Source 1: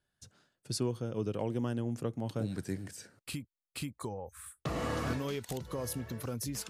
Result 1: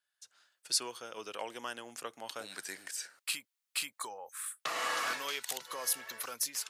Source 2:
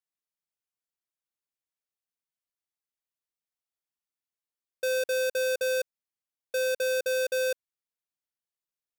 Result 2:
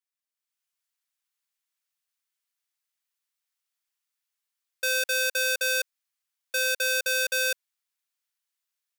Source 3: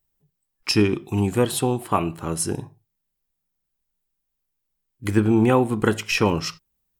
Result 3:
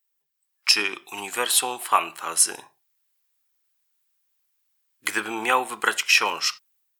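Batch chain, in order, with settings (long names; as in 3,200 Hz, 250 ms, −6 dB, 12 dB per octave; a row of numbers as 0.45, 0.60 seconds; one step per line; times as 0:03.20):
high-pass filter 1,200 Hz 12 dB per octave
automatic gain control gain up to 8.5 dB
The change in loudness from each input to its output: +0.5, +3.5, −0.5 LU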